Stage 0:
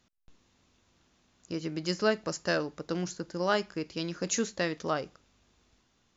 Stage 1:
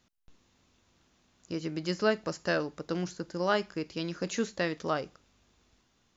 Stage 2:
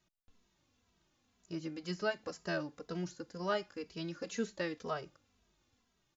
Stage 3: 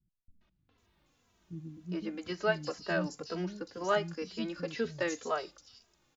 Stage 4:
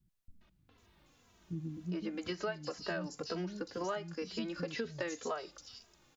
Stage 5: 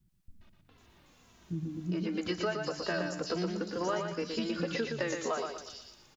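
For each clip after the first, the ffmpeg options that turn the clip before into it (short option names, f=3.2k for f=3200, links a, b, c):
-filter_complex "[0:a]acrossover=split=4700[a][b];[b]acompressor=threshold=-47dB:ratio=4:attack=1:release=60[c];[a][c]amix=inputs=2:normalize=0"
-filter_complex "[0:a]asplit=2[a][b];[b]adelay=2.7,afreqshift=-2[c];[a][c]amix=inputs=2:normalize=1,volume=-4.5dB"
-filter_complex "[0:a]acrossover=split=230|4400[a][b][c];[b]adelay=410[d];[c]adelay=780[e];[a][d][e]amix=inputs=3:normalize=0,volume=5.5dB"
-af "acompressor=threshold=-40dB:ratio=6,volume=5dB"
-af "aecho=1:1:118|236|354|472|590:0.562|0.208|0.077|0.0285|0.0105,volume=4dB"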